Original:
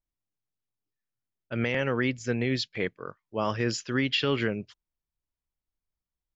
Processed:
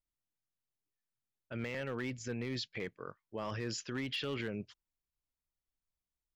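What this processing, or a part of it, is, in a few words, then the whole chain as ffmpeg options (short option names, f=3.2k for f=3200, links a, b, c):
clipper into limiter: -af "asoftclip=type=hard:threshold=-19dB,alimiter=level_in=2dB:limit=-24dB:level=0:latency=1:release=19,volume=-2dB,volume=-4.5dB"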